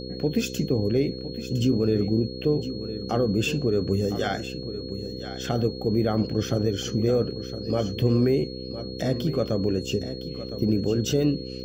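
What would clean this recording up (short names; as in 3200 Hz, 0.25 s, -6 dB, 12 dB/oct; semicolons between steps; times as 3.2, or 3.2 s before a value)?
de-hum 64 Hz, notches 8; notch 4300 Hz, Q 30; inverse comb 1.01 s -12 dB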